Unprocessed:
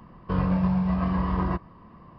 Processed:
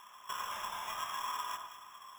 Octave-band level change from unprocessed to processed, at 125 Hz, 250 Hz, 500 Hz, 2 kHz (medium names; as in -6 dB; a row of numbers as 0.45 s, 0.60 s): under -40 dB, under -40 dB, -19.5 dB, -3.0 dB